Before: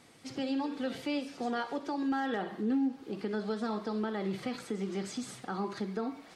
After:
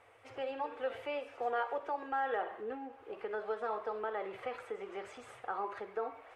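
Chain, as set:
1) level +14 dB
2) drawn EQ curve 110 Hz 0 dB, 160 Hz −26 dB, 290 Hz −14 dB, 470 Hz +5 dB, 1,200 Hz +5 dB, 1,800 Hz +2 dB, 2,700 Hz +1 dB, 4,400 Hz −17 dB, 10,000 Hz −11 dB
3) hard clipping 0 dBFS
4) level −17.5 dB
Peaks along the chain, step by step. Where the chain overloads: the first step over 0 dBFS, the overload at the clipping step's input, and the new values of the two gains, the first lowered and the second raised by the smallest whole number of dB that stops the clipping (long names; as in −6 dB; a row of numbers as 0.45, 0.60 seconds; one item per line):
−9.0, −5.0, −5.0, −22.5 dBFS
no step passes full scale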